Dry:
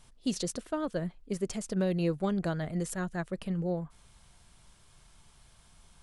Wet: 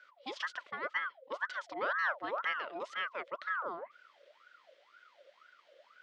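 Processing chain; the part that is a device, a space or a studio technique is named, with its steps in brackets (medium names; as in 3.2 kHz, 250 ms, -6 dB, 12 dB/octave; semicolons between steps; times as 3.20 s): voice changer toy (ring modulator with a swept carrier 1 kHz, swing 50%, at 2 Hz; cabinet simulation 440–4900 Hz, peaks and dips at 570 Hz +10 dB, 810 Hz -9 dB, 1.4 kHz +5 dB, 2 kHz +8 dB, 3.2 kHz +8 dB); trim -4.5 dB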